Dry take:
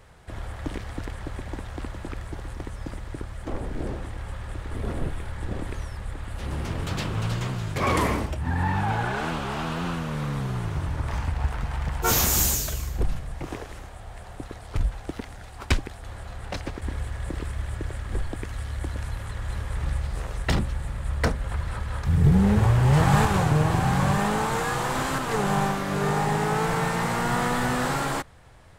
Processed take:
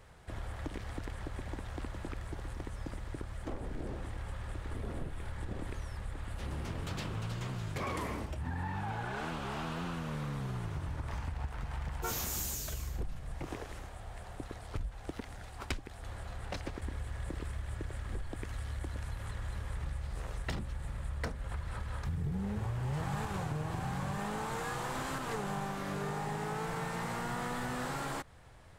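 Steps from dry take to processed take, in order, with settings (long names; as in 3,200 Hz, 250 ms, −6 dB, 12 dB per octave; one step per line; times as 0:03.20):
downward compressor 4 to 1, threshold −30 dBFS, peak gain reduction 14 dB
level −5 dB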